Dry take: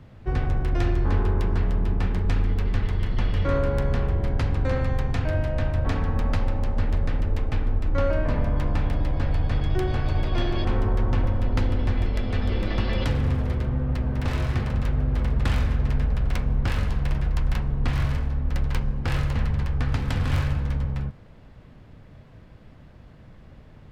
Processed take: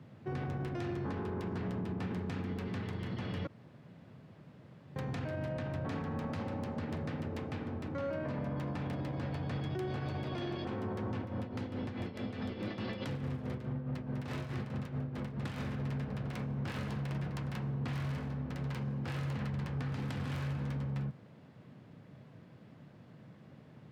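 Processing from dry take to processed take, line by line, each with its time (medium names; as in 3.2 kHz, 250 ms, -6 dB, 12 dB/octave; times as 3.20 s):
3.47–4.96 s: room tone
11.17–15.64 s: tremolo 4.7 Hz, depth 69%
whole clip: high-pass 130 Hz 24 dB/octave; bass shelf 310 Hz +6 dB; peak limiter -23 dBFS; trim -6.5 dB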